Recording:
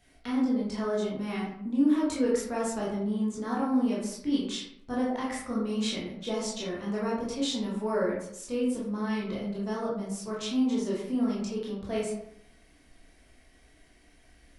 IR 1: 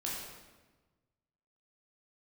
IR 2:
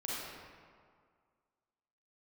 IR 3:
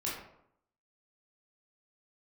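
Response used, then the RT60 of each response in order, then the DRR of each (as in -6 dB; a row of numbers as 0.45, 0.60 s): 3; 1.3, 2.0, 0.70 s; -5.5, -7.0, -6.0 dB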